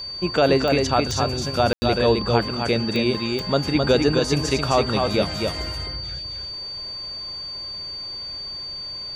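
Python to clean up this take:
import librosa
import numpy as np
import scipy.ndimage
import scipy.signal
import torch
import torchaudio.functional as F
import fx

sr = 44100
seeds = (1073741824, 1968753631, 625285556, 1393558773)

y = fx.fix_declick_ar(x, sr, threshold=10.0)
y = fx.notch(y, sr, hz=4600.0, q=30.0)
y = fx.fix_ambience(y, sr, seeds[0], print_start_s=8.57, print_end_s=9.07, start_s=1.73, end_s=1.82)
y = fx.fix_echo_inverse(y, sr, delay_ms=262, level_db=-4.0)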